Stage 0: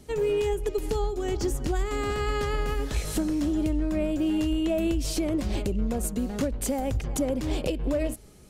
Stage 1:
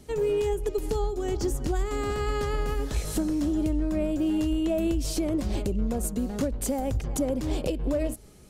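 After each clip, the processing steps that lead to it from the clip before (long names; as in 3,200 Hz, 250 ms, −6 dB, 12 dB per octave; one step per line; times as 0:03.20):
dynamic equaliser 2,400 Hz, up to −4 dB, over −48 dBFS, Q 0.9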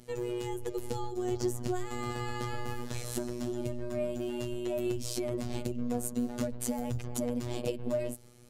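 phases set to zero 121 Hz
level −2 dB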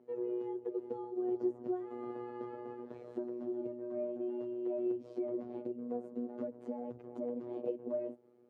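four-pole ladder band-pass 450 Hz, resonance 30%
level +7 dB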